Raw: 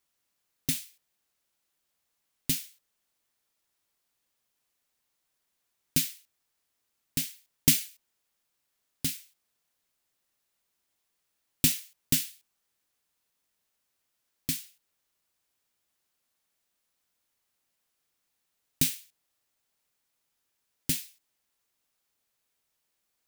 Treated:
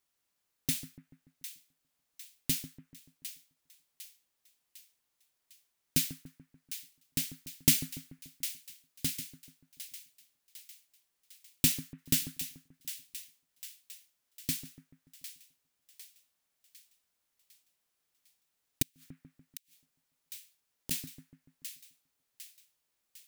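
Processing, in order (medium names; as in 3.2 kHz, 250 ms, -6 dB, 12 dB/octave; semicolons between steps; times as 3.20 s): two-band feedback delay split 1.5 kHz, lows 145 ms, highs 753 ms, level -11.5 dB; 18.82–20.91 s: inverted gate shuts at -22 dBFS, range -37 dB; trim -2.5 dB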